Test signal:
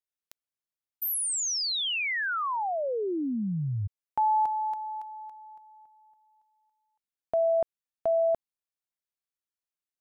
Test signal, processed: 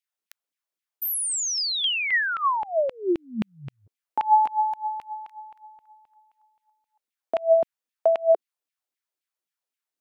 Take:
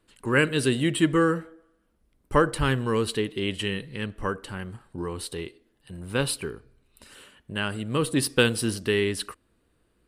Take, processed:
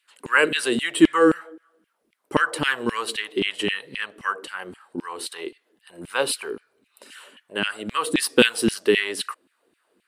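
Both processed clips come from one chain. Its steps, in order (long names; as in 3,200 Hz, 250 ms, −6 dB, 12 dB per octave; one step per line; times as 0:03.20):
auto-filter high-pass saw down 3.8 Hz 210–2,800 Hz
level +2.5 dB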